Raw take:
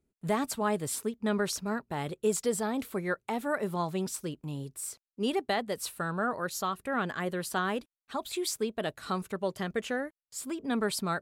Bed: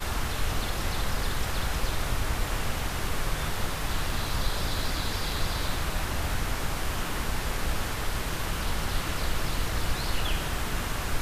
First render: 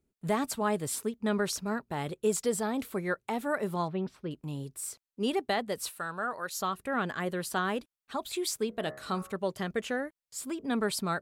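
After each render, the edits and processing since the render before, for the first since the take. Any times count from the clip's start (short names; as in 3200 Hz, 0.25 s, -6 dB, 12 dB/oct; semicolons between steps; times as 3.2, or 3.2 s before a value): 3.88–4.31 air absorption 380 m; 5.89–6.59 low shelf 440 Hz -12 dB; 8.67–9.34 de-hum 69.4 Hz, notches 31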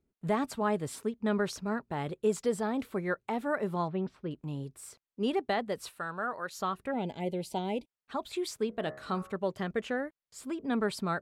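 6.91–7.88 spectral gain 990–2000 Hz -23 dB; LPF 2700 Hz 6 dB/oct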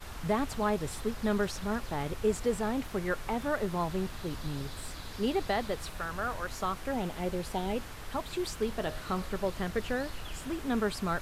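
add bed -13 dB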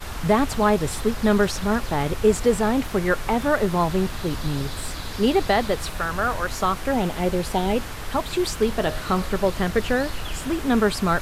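gain +10.5 dB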